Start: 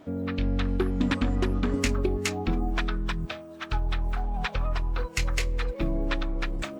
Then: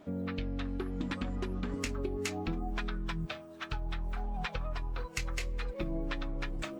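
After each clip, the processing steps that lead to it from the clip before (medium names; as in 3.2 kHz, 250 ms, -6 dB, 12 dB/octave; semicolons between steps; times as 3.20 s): compression, threshold -26 dBFS, peak gain reduction 7 dB; flange 0.71 Hz, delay 4.8 ms, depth 2.7 ms, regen +59%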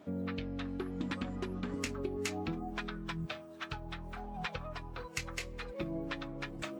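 high-pass 78 Hz 12 dB/octave; trim -1 dB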